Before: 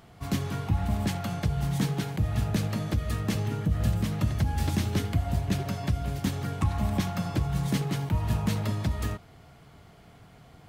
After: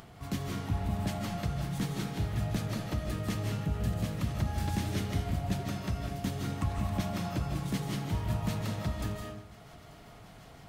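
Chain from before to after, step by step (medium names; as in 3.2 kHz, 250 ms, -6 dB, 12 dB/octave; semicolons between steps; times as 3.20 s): thinning echo 887 ms, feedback 76%, level -23 dB; on a send at -1 dB: reverberation RT60 0.65 s, pre-delay 115 ms; on the sum: upward compressor, threshold -38 dBFS; trim -6 dB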